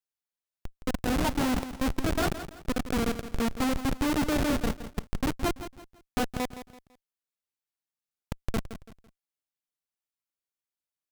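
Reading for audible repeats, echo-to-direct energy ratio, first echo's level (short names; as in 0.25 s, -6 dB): 3, -11.5 dB, -12.0 dB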